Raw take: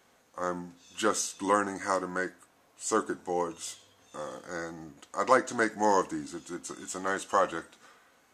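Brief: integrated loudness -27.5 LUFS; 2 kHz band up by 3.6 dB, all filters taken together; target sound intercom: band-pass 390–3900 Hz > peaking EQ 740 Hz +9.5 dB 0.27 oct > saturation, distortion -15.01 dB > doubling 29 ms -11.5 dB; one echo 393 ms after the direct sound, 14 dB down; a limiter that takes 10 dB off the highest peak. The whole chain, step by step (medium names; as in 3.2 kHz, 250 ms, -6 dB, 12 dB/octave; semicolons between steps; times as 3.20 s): peaking EQ 2 kHz +5 dB; peak limiter -18 dBFS; band-pass 390–3900 Hz; peaking EQ 740 Hz +9.5 dB 0.27 oct; delay 393 ms -14 dB; saturation -22.5 dBFS; doubling 29 ms -11.5 dB; trim +7.5 dB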